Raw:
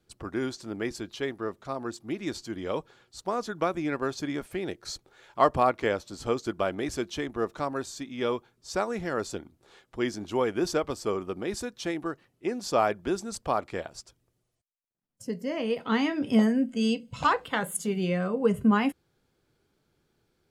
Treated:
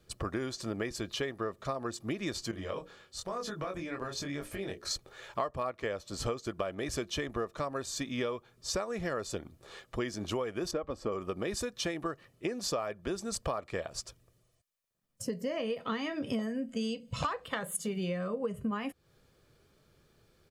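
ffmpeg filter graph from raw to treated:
-filter_complex "[0:a]asettb=1/sr,asplit=3[a][b][c];[a]atrim=end=2.514[d];[b]atrim=start=2.51:end=4.91,asetpts=PTS-STARTPTS,afade=t=in:d=0.004:c=qsin,afade=t=out:st=2.396:d=0.004:c=qsin,acompressor=threshold=-35dB:ratio=6:attack=3.2:release=140:knee=1:detection=peak,flanger=delay=20:depth=4.1:speed=1,bandreject=f=60:t=h:w=6,bandreject=f=120:t=h:w=6,bandreject=f=180:t=h:w=6,bandreject=f=240:t=h:w=6,bandreject=f=300:t=h:w=6,bandreject=f=360:t=h:w=6,bandreject=f=420:t=h:w=6,bandreject=f=480:t=h:w=6,bandreject=f=540:t=h:w=6[e];[c]atrim=start=4.906[f];[d][e]acrossfade=d=0.004:c1=hsin:c2=qsin[g];[g][f]acrossfade=d=0.004:c1=qsin:c2=hsin,asettb=1/sr,asplit=3[h][i][j];[h]atrim=end=10.714[k];[i]atrim=start=10.71:end=11.12,asetpts=PTS-STARTPTS,afade=t=in:d=0.004:c=qsin,afade=t=out:st=0.406:d=0.004:c=qsin,lowpass=f=1.2k:p=1,aecho=1:1:3.7:0.34,atrim=end_sample=18081[l];[j]atrim=start=11.116[m];[k][l]acrossfade=d=0.004:c1=hsin:c2=qsin[n];[n][m]acrossfade=d=0.004:c1=qsin:c2=hsin,bandreject=f=740:w=15,aecho=1:1:1.7:0.36,acompressor=threshold=-37dB:ratio=10,volume=6dB"

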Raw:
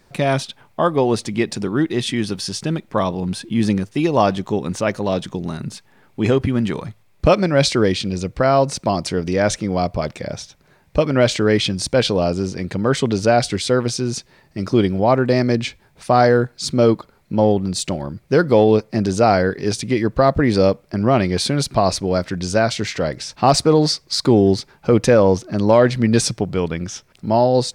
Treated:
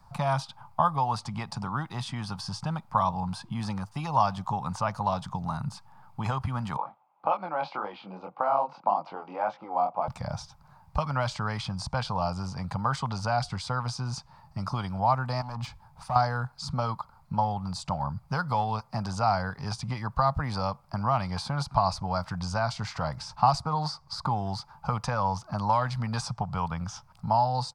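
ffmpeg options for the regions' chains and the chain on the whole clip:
-filter_complex "[0:a]asettb=1/sr,asplit=3[a][b][c];[a]atrim=end=6.774[d];[b]atrim=start=6.77:end=10.08,asetpts=PTS-STARTPTS,afade=t=in:d=0.004:c=qsin,afade=t=out:st=3.306:d=0.004:c=qsin,flanger=delay=19:depth=7.5:speed=1.8,highpass=f=280:w=0.5412,highpass=f=280:w=1.3066,equalizer=f=330:t=q:w=4:g=9,equalizer=f=520:t=q:w=4:g=7,equalizer=f=800:t=q:w=4:g=8,equalizer=f=1.8k:t=q:w=4:g=-7,lowpass=f=2.8k:w=0.5412,lowpass=f=2.8k:w=1.3066[e];[c]atrim=start=10.076[f];[d][e]acrossfade=d=0.004:c1=hsin:c2=qsin[g];[g][f]acrossfade=d=0.004:c1=qsin:c2=hsin,asettb=1/sr,asplit=3[h][i][j];[h]atrim=end=15.414[k];[i]atrim=start=15.41:end=16.16,asetpts=PTS-STARTPTS,afade=t=in:d=0.004:c=qsin,afade=t=out:st=0.746:d=0.004:c=qsin,acompressor=threshold=-25dB:ratio=2.5:attack=3.2:release=140:knee=1:detection=peak,asoftclip=type=hard:threshold=-23.5dB[l];[j]atrim=start=16.156[m];[k][l]acrossfade=d=0.004:c1=hsin:c2=qsin[n];[n][m]acrossfade=d=0.004:c1=qsin:c2=hsin,equalizer=f=4.8k:w=6.2:g=7.5,acrossover=split=330|790|1600|7700[o][p][q][r][s];[o]acompressor=threshold=-30dB:ratio=4[t];[p]acompressor=threshold=-26dB:ratio=4[u];[q]acompressor=threshold=-32dB:ratio=4[v];[r]acompressor=threshold=-25dB:ratio=4[w];[s]acompressor=threshold=-47dB:ratio=4[x];[t][u][v][w][x]amix=inputs=5:normalize=0,firequalizer=gain_entry='entry(140,0);entry(350,-27);entry(840,5);entry(1200,1);entry(1800,-16);entry(9800,-11)':delay=0.05:min_phase=1,volume=2dB"

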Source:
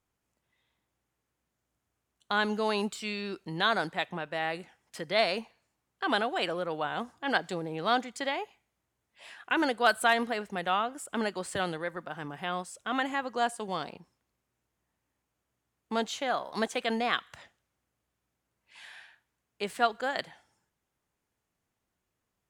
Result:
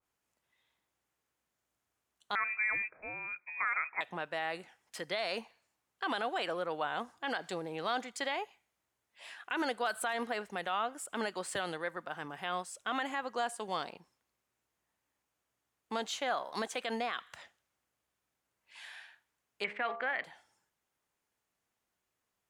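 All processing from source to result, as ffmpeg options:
-filter_complex "[0:a]asettb=1/sr,asplit=3[a][b][c];[a]atrim=end=2.354[d];[b]atrim=start=2.35:end=4.01,asetpts=PTS-STARTPTS,afade=t=in:d=0.004:c=qsin,afade=t=out:st=1.656:d=0.004:c=qsin,highpass=f=340:w=0.5412,highpass=f=340:w=1.3066,lowpass=f=2.4k:t=q:w=0.5098,lowpass=f=2.4k:t=q:w=0.6013,lowpass=f=2.4k:t=q:w=0.9,lowpass=f=2.4k:t=q:w=2.563,afreqshift=-2800[e];[c]atrim=start=4.006[f];[d][e]acrossfade=d=0.004:c1=hsin:c2=qsin[g];[g][f]acrossfade=d=0.004:c1=qsin:c2=hsin,asettb=1/sr,asplit=3[h][i][j];[h]atrim=end=19.644[k];[i]atrim=start=19.64:end=20.24,asetpts=PTS-STARTPTS,afade=t=in:d=0.004:c=qsin,afade=t=out:st=0.596:d=0.004:c=qsin,agate=range=-12dB:threshold=-45dB:ratio=16:release=100:detection=peak,lowpass=f=2.2k:t=q:w=5.3,bandreject=f=68.91:t=h:w=4,bandreject=f=137.82:t=h:w=4,bandreject=f=206.73:t=h:w=4,bandreject=f=275.64:t=h:w=4,bandreject=f=344.55:t=h:w=4,bandreject=f=413.46:t=h:w=4,bandreject=f=482.37:t=h:w=4,bandreject=f=551.28:t=h:w=4,bandreject=f=620.19:t=h:w=4,bandreject=f=689.1:t=h:w=4,bandreject=f=758.01:t=h:w=4,bandreject=f=826.92:t=h:w=4,bandreject=f=895.83:t=h:w=4,bandreject=f=964.74:t=h:w=4,bandreject=f=1.03365k:t=h:w=4,bandreject=f=1.10256k:t=h:w=4,bandreject=f=1.17147k:t=h:w=4,bandreject=f=1.24038k:t=h:w=4[l];[j]atrim=start=20.236[m];[k][l]acrossfade=d=0.004:c1=hsin:c2=qsin[n];[n][m]acrossfade=d=0.004:c1=qsin:c2=hsin,lowshelf=f=320:g=-10.5,alimiter=limit=-22.5dB:level=0:latency=1:release=55,adynamicequalizer=threshold=0.00708:dfrequency=2100:dqfactor=0.7:tfrequency=2100:tqfactor=0.7:attack=5:release=100:ratio=0.375:range=2:mode=cutabove:tftype=highshelf"

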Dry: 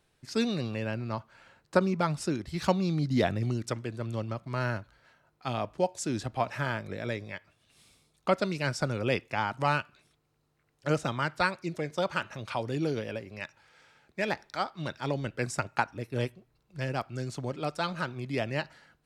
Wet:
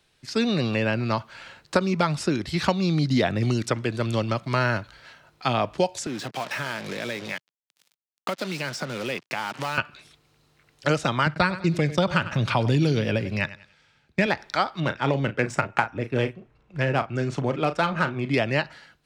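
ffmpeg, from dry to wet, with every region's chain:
-filter_complex "[0:a]asettb=1/sr,asplit=3[a][b][c];[a]atrim=end=6.064[d];[b]atrim=start=6.06:end=9.78,asetpts=PTS-STARTPTS,afade=t=in:d=0.004:c=qsin,afade=t=out:st=3.716:d=0.004:c=qsin,acompressor=threshold=-38dB:ratio=4:attack=3.2:release=140:knee=1:detection=peak,acrusher=bits=7:mix=0:aa=0.5,highpass=f=140:w=0.5412,highpass=f=140:w=1.3066[e];[c]atrim=start=9.776[f];[d][e]acrossfade=d=0.004:c1=hsin:c2=qsin[g];[g][f]acrossfade=d=0.004:c1=qsin:c2=hsin,asettb=1/sr,asplit=3[h][i][j];[h]atrim=end=11.264[k];[i]atrim=start=11.26:end=14.26,asetpts=PTS-STARTPTS,afade=t=in:d=0.004:c=qsin,afade=t=out:st=2.996:d=0.004:c=qsin,agate=range=-16dB:threshold=-49dB:ratio=16:release=100:detection=peak,bass=f=250:g=12,treble=f=4k:g=-1,aecho=1:1:96|192|288:0.141|0.0396|0.0111,atrim=end_sample=132300[l];[j]atrim=start=14.256[m];[k][l]acrossfade=d=0.004:c1=hsin:c2=qsin[n];[n][m]acrossfade=d=0.004:c1=qsin:c2=hsin,asettb=1/sr,asplit=3[o][p][q];[o]atrim=end=14.804[r];[p]atrim=start=14.8:end=18.34,asetpts=PTS-STARTPTS,afade=t=in:d=0.004:c=qsin,afade=t=out:st=3.536:d=0.004:c=qsin,equalizer=f=4.3k:t=o:w=0.8:g=-12,asplit=2[s][t];[t]adelay=36,volume=-11dB[u];[s][u]amix=inputs=2:normalize=0,atrim=end_sample=156114,adynamicsmooth=sensitivity=7:basefreq=4.1k[v];[q]atrim=start=18.336[w];[r][v]acrossfade=d=0.004:c1=hsin:c2=qsin[x];[x][w]acrossfade=d=0.004:c1=qsin:c2=hsin,dynaudnorm=f=100:g=9:m=8dB,equalizer=f=3.7k:t=o:w=2.1:g=8,acrossover=split=100|2200[y][z][aa];[y]acompressor=threshold=-46dB:ratio=4[ab];[z]acompressor=threshold=-21dB:ratio=4[ac];[aa]acompressor=threshold=-37dB:ratio=4[ad];[ab][ac][ad]amix=inputs=3:normalize=0,volume=2dB"

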